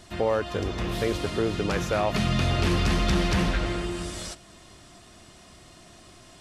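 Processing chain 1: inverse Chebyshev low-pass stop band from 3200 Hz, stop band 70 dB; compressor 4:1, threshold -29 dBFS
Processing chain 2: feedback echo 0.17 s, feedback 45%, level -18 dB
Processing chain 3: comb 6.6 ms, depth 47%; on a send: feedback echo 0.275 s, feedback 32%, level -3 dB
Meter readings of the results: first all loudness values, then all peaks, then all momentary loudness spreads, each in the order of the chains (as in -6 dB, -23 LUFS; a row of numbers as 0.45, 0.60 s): -33.5, -26.5, -23.5 LUFS; -18.0, -13.5, -9.5 dBFS; 4, 9, 11 LU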